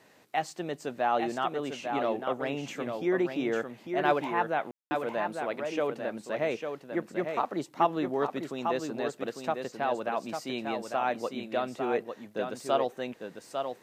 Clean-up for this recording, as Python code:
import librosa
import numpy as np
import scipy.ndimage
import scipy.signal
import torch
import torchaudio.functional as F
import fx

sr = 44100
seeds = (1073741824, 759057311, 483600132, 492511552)

y = fx.fix_ambience(x, sr, seeds[0], print_start_s=0.0, print_end_s=0.5, start_s=4.71, end_s=4.91)
y = fx.fix_echo_inverse(y, sr, delay_ms=850, level_db=-6.0)